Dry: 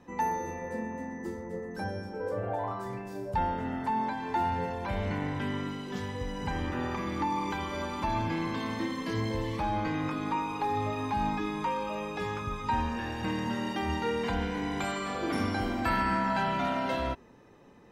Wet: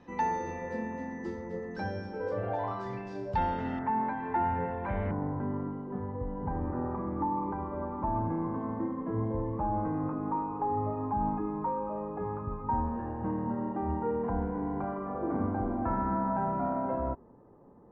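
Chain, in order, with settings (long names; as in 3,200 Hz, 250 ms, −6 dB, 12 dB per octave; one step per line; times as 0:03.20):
low-pass filter 5,400 Hz 24 dB per octave, from 0:03.79 2,000 Hz, from 0:05.11 1,100 Hz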